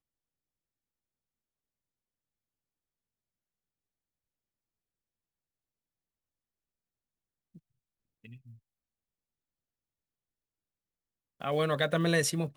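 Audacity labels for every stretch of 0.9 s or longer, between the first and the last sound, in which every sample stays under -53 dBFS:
8.570000	11.400000	silence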